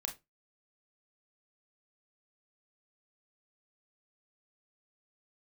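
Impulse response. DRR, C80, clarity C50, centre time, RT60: 3.0 dB, 22.0 dB, 13.0 dB, 14 ms, 0.20 s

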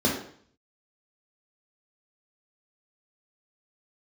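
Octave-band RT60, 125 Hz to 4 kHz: 0.75, 0.60, 0.55, 0.55, 0.55, 0.55 s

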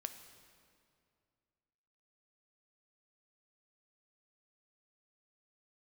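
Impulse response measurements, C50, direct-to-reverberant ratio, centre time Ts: 9.5 dB, 7.5 dB, 23 ms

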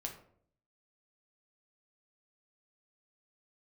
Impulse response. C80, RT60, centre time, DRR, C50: 12.5 dB, 0.60 s, 19 ms, 1.5 dB, 8.5 dB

